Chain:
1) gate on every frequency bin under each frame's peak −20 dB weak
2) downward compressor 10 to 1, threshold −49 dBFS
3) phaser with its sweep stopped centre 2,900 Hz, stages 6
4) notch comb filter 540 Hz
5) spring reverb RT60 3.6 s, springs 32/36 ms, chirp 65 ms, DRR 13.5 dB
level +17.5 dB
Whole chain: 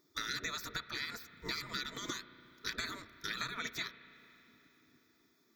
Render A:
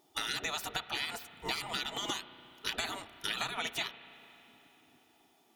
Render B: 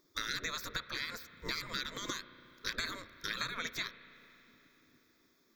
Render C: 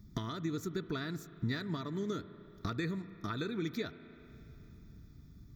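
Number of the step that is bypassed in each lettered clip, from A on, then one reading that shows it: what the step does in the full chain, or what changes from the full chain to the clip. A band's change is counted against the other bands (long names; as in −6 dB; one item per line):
3, 125 Hz band −4.0 dB
4, change in integrated loudness +1.5 LU
1, 125 Hz band +18.0 dB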